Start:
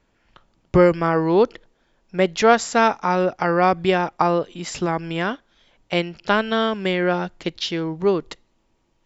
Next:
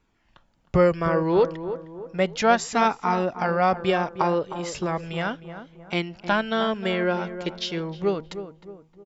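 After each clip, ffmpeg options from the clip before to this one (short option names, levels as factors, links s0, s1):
-filter_complex "[0:a]flanger=delay=0.8:depth=1.4:regen=-50:speed=0.34:shape=triangular,asplit=2[s0][s1];[s1]adelay=310,lowpass=f=1300:p=1,volume=0.299,asplit=2[s2][s3];[s3]adelay=310,lowpass=f=1300:p=1,volume=0.45,asplit=2[s4][s5];[s5]adelay=310,lowpass=f=1300:p=1,volume=0.45,asplit=2[s6][s7];[s7]adelay=310,lowpass=f=1300:p=1,volume=0.45,asplit=2[s8][s9];[s9]adelay=310,lowpass=f=1300:p=1,volume=0.45[s10];[s2][s4][s6][s8][s10]amix=inputs=5:normalize=0[s11];[s0][s11]amix=inputs=2:normalize=0"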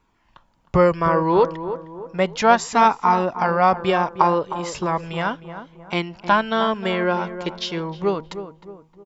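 -af "equalizer=f=1000:t=o:w=0.43:g=9,volume=1.26"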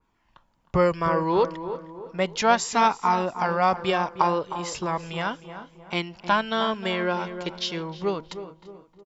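-af "aecho=1:1:338|676|1014:0.1|0.039|0.0152,adynamicequalizer=threshold=0.02:dfrequency=2400:dqfactor=0.7:tfrequency=2400:tqfactor=0.7:attack=5:release=100:ratio=0.375:range=3:mode=boostabove:tftype=highshelf,volume=0.562"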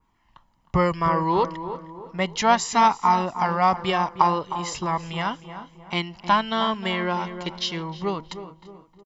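-af "aecho=1:1:1:0.4,volume=1.12"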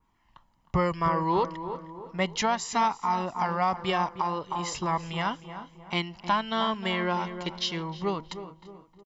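-af "alimiter=limit=0.224:level=0:latency=1:release=354,volume=0.75"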